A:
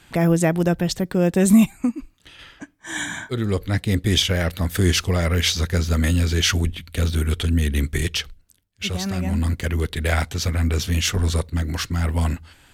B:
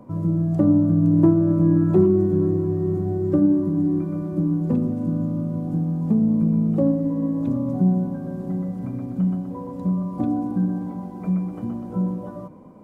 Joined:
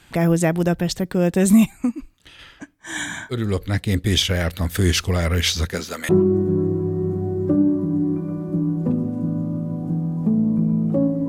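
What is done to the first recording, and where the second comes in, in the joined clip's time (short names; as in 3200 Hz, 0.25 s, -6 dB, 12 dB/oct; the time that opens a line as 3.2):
A
5.68–6.09 HPF 150 Hz -> 770 Hz
6.09 switch to B from 1.93 s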